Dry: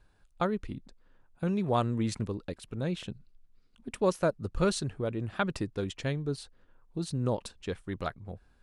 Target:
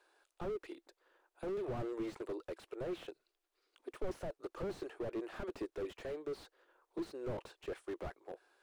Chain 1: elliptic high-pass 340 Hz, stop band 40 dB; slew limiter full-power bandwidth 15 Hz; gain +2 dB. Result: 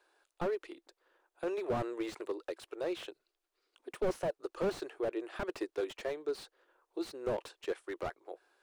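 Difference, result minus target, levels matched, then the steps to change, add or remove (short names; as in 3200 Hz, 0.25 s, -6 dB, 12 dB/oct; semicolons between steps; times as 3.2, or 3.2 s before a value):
slew limiter: distortion -7 dB
change: slew limiter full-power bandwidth 5 Hz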